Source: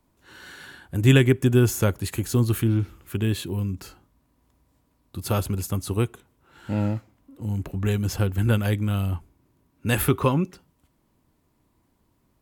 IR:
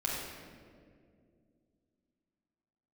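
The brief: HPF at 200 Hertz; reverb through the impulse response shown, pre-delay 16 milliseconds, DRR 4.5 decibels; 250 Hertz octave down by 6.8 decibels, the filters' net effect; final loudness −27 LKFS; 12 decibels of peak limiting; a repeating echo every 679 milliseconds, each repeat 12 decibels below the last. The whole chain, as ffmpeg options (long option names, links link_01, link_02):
-filter_complex "[0:a]highpass=200,equalizer=frequency=250:width_type=o:gain=-6.5,alimiter=limit=-16dB:level=0:latency=1,aecho=1:1:679|1358|2037:0.251|0.0628|0.0157,asplit=2[link_01][link_02];[1:a]atrim=start_sample=2205,adelay=16[link_03];[link_02][link_03]afir=irnorm=-1:irlink=0,volume=-10.5dB[link_04];[link_01][link_04]amix=inputs=2:normalize=0,volume=4dB"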